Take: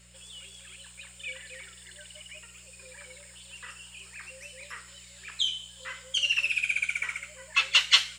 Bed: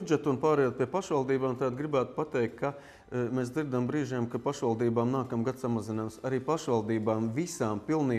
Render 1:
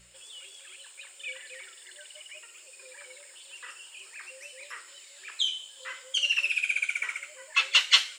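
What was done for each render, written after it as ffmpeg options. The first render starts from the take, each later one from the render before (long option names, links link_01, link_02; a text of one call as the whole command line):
ffmpeg -i in.wav -af "bandreject=frequency=60:width_type=h:width=4,bandreject=frequency=120:width_type=h:width=4,bandreject=frequency=180:width_type=h:width=4" out.wav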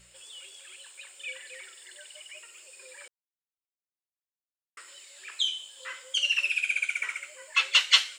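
ffmpeg -i in.wav -filter_complex "[0:a]asplit=3[link_01][link_02][link_03];[link_01]atrim=end=3.08,asetpts=PTS-STARTPTS,afade=type=out:start_time=3.076:duration=0.004:curve=hsin[link_04];[link_02]atrim=start=3.08:end=4.77,asetpts=PTS-STARTPTS,volume=0[link_05];[link_03]atrim=start=4.77,asetpts=PTS-STARTPTS,afade=type=in:duration=0.004:curve=hsin[link_06];[link_04][link_05][link_06]concat=n=3:v=0:a=1" out.wav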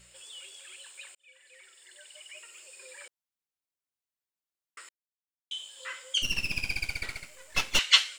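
ffmpeg -i in.wav -filter_complex "[0:a]asettb=1/sr,asplit=3[link_01][link_02][link_03];[link_01]atrim=end=6.224[link_04];[link_02]atrim=start=6.22:end=7.79,asetpts=PTS-STARTPTS,afade=type=in:duration=0.004:curve=qsin,afade=type=out:start_time=1.566:duration=0.004:curve=qsin,aeval=exprs='max(val(0),0)':channel_layout=same[link_05];[link_03]atrim=start=7.786[link_06];[link_04][link_05]acrossfade=duration=0.004:curve1=hsin:curve2=qsin[link_07];[link_07][link_06]acrossfade=duration=0.004:curve1=qsin:curve2=hsin,asplit=4[link_08][link_09][link_10][link_11];[link_08]atrim=end=1.15,asetpts=PTS-STARTPTS,afade=type=out:start_time=1.146:duration=0.004:curve=hsin[link_12];[link_09]atrim=start=1.15:end=4.89,asetpts=PTS-STARTPTS,afade=type=in:duration=1.38,afade=type=out:start_time=3.736:duration=0.004:curve=hsin[link_13];[link_10]atrim=start=4.89:end=5.51,asetpts=PTS-STARTPTS,volume=0[link_14];[link_11]atrim=start=5.51,asetpts=PTS-STARTPTS,afade=type=in:duration=0.004:curve=hsin[link_15];[link_12][link_13][link_14][link_15]concat=n=4:v=0:a=1" out.wav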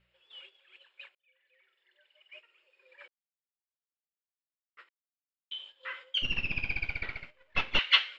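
ffmpeg -i in.wav -af "agate=range=-13dB:threshold=-46dB:ratio=16:detection=peak,lowpass=frequency=3200:width=0.5412,lowpass=frequency=3200:width=1.3066" out.wav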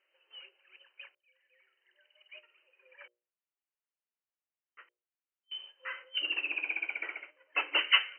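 ffmpeg -i in.wav -af "afftfilt=real='re*between(b*sr/4096,280,3100)':imag='im*between(b*sr/4096,280,3100)':win_size=4096:overlap=0.75,bandreject=frequency=60:width_type=h:width=6,bandreject=frequency=120:width_type=h:width=6,bandreject=frequency=180:width_type=h:width=6,bandreject=frequency=240:width_type=h:width=6,bandreject=frequency=300:width_type=h:width=6,bandreject=frequency=360:width_type=h:width=6,bandreject=frequency=420:width_type=h:width=6,bandreject=frequency=480:width_type=h:width=6,bandreject=frequency=540:width_type=h:width=6,bandreject=frequency=600:width_type=h:width=6" out.wav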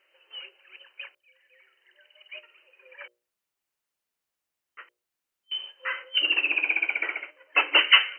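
ffmpeg -i in.wav -af "volume=9.5dB,alimiter=limit=-3dB:level=0:latency=1" out.wav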